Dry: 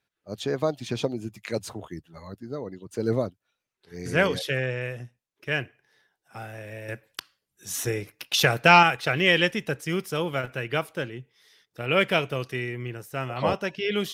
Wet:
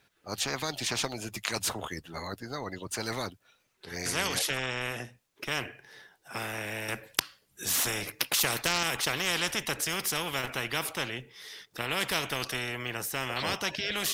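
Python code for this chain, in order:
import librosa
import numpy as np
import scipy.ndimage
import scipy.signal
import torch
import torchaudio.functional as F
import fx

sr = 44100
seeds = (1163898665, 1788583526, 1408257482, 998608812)

y = fx.spectral_comp(x, sr, ratio=4.0)
y = y * 10.0 ** (2.5 / 20.0)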